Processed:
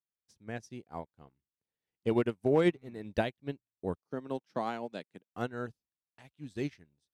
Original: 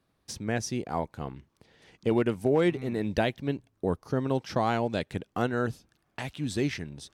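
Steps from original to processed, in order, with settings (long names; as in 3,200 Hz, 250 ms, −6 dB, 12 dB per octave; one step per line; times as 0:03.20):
0:04.02–0:05.34: high-pass filter 160 Hz 24 dB per octave
expander for the loud parts 2.5 to 1, over −45 dBFS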